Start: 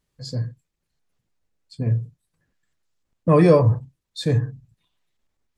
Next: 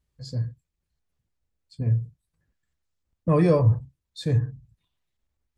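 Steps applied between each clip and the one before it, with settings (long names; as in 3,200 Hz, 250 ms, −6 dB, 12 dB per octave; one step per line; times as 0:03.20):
parametric band 61 Hz +13 dB 1.5 octaves
level −6.5 dB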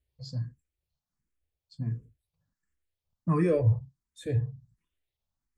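frequency shifter mixed with the dry sound +1.4 Hz
level −3 dB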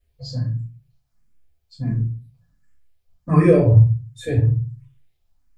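rectangular room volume 140 cubic metres, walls furnished, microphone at 5.2 metres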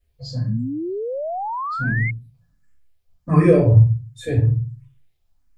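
sound drawn into the spectrogram rise, 0:00.48–0:02.11, 200–2,200 Hz −26 dBFS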